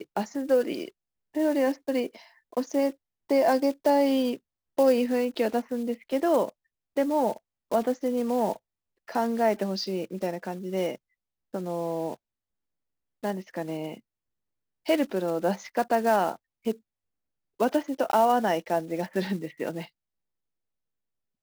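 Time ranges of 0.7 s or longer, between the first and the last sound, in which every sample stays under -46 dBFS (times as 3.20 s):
12.15–13.23 s
13.99–14.86 s
16.76–17.60 s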